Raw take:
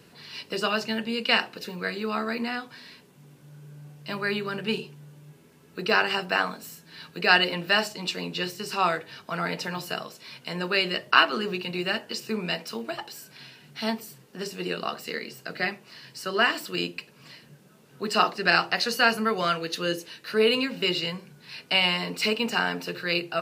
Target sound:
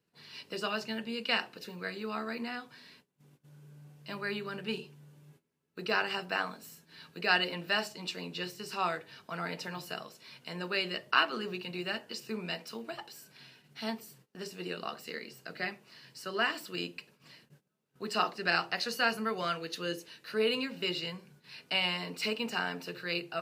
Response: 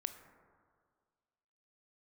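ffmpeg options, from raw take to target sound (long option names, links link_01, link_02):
-af "agate=range=-19dB:threshold=-51dB:ratio=16:detection=peak,volume=-8dB"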